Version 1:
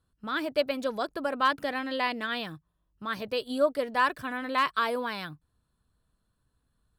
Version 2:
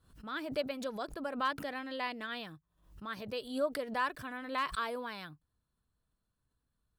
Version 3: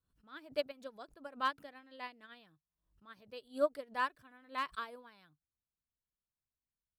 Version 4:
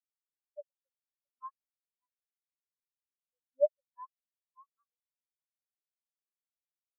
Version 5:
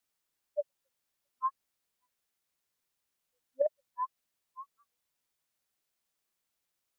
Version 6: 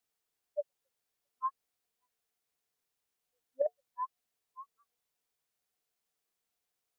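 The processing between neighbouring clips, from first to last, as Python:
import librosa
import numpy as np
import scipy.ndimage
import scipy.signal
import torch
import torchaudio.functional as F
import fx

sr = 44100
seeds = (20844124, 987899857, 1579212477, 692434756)

y1 = fx.pre_swell(x, sr, db_per_s=110.0)
y1 = y1 * 10.0 ** (-8.5 / 20.0)
y2 = fx.upward_expand(y1, sr, threshold_db=-42.0, expansion=2.5)
y2 = y2 * 10.0 ** (3.0 / 20.0)
y3 = fx.spectral_expand(y2, sr, expansion=4.0)
y3 = y3 * 10.0 ** (3.5 / 20.0)
y4 = fx.over_compress(y3, sr, threshold_db=-28.0, ratio=-0.5)
y4 = y4 * 10.0 ** (6.5 / 20.0)
y5 = fx.small_body(y4, sr, hz=(450.0, 720.0), ring_ms=95, db=10)
y5 = y5 * 10.0 ** (-2.5 / 20.0)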